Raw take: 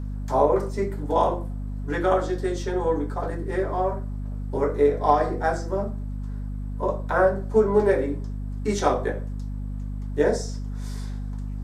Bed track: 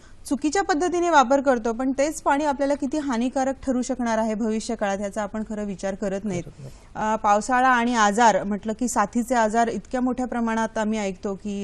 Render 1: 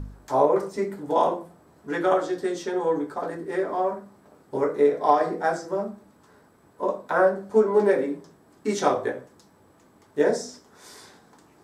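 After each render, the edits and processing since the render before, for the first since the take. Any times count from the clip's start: de-hum 50 Hz, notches 5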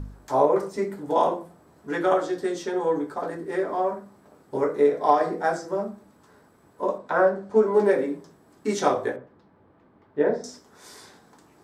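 6.98–7.63 air absorption 59 m; 9.16–10.44 air absorption 390 m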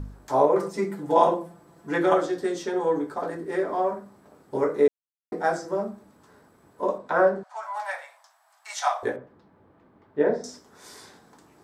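0.58–2.26 comb 5.9 ms; 4.88–5.32 mute; 7.43–9.03 steep high-pass 660 Hz 72 dB/oct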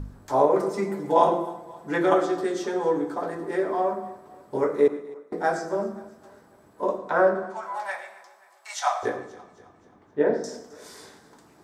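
thinning echo 0.264 s, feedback 47%, high-pass 180 Hz, level -19 dB; plate-style reverb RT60 0.69 s, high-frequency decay 0.6×, pre-delay 80 ms, DRR 11.5 dB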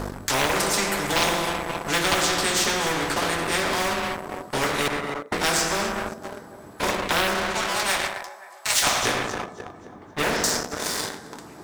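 sample leveller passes 2; spectral compressor 4:1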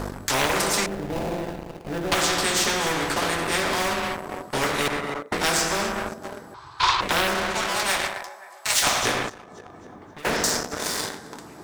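0.86–2.12 median filter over 41 samples; 6.54–7.01 EQ curve 140 Hz 0 dB, 210 Hz -28 dB, 340 Hz -9 dB, 580 Hz -17 dB, 1000 Hz +11 dB, 1900 Hz 0 dB, 4200 Hz +12 dB, 14000 Hz -22 dB; 9.29–10.25 compressor 16:1, threshold -37 dBFS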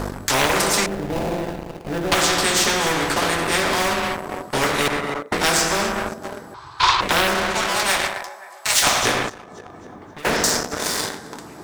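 gain +4 dB; limiter -2 dBFS, peak gain reduction 1 dB

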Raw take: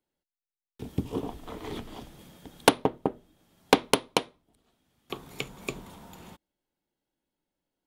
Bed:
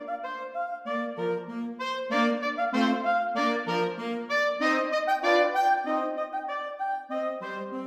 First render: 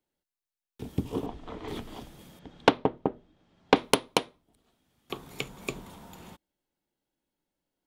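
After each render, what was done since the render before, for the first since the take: 1.26–1.68 air absorption 110 m; 2.39–3.76 air absorption 150 m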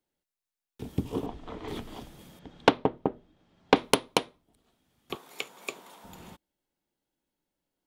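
5.15–6.04 HPF 470 Hz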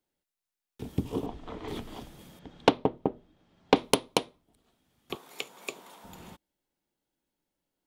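dynamic EQ 1600 Hz, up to -6 dB, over -45 dBFS, Q 1.3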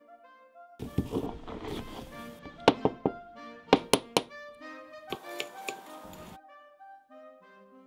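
add bed -20.5 dB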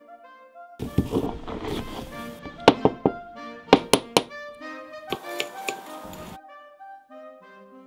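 gain +7.5 dB; limiter -1 dBFS, peak gain reduction 2 dB

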